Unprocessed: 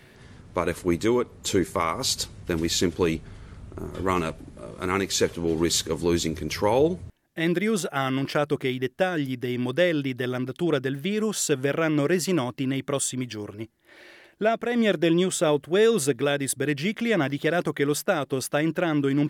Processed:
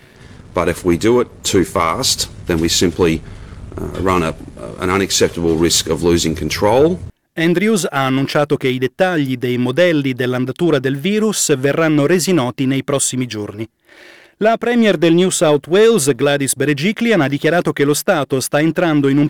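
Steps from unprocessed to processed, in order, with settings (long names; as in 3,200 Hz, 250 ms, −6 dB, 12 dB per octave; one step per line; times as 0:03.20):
leveller curve on the samples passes 1
level +7 dB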